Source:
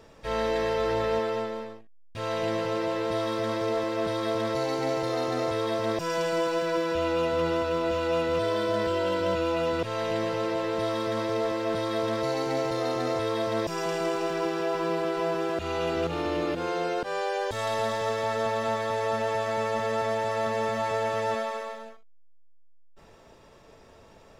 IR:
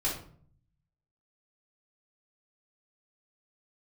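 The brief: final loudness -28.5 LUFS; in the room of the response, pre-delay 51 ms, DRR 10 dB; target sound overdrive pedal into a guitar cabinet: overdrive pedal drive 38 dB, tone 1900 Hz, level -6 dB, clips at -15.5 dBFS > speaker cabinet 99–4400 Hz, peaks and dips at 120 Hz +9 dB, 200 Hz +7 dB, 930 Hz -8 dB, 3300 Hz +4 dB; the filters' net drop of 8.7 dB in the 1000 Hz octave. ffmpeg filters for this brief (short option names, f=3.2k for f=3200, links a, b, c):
-filter_complex "[0:a]equalizer=f=1k:t=o:g=-8,asplit=2[a][b];[1:a]atrim=start_sample=2205,adelay=51[c];[b][c]afir=irnorm=-1:irlink=0,volume=-16.5dB[d];[a][d]amix=inputs=2:normalize=0,asplit=2[e][f];[f]highpass=f=720:p=1,volume=38dB,asoftclip=type=tanh:threshold=-15.5dB[g];[e][g]amix=inputs=2:normalize=0,lowpass=f=1.9k:p=1,volume=-6dB,highpass=99,equalizer=f=120:t=q:w=4:g=9,equalizer=f=200:t=q:w=4:g=7,equalizer=f=930:t=q:w=4:g=-8,equalizer=f=3.3k:t=q:w=4:g=4,lowpass=f=4.4k:w=0.5412,lowpass=f=4.4k:w=1.3066,volume=-6dB"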